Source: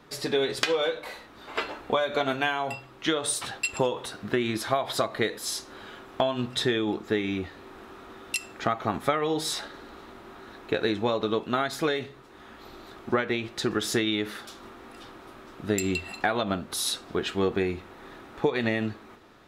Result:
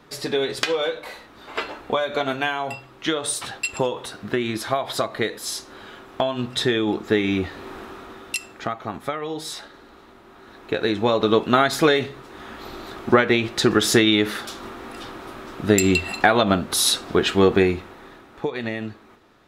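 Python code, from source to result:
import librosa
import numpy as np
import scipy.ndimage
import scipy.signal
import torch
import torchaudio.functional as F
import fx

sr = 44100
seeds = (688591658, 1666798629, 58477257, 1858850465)

y = fx.gain(x, sr, db=fx.line((6.29, 2.5), (7.72, 9.5), (8.83, -2.5), (10.28, -2.5), (11.37, 9.5), (17.63, 9.5), (18.26, -1.5)))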